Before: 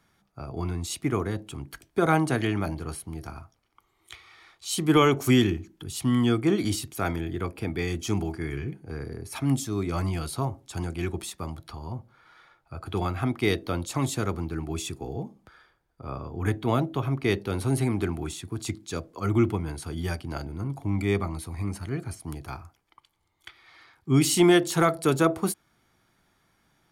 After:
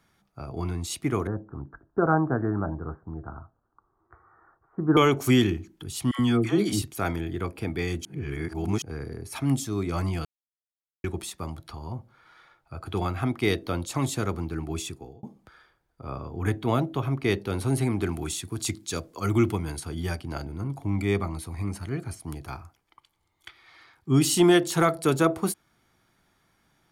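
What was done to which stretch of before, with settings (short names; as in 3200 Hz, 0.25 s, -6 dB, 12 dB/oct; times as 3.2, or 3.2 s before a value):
1.27–4.97 steep low-pass 1600 Hz 72 dB/oct
6.11–6.82 dispersion lows, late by 84 ms, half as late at 820 Hz
8.05–8.82 reverse
10.25–11.04 mute
14.81–15.23 fade out
18.06–19.8 high shelf 3100 Hz +8 dB
24.09–24.55 notch 2200 Hz, Q 6.8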